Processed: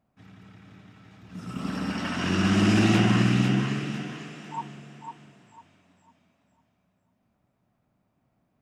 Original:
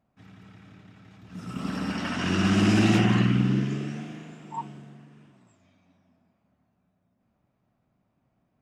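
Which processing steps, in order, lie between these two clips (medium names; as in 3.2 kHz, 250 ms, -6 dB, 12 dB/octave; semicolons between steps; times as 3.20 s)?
thinning echo 500 ms, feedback 35%, high-pass 600 Hz, level -5 dB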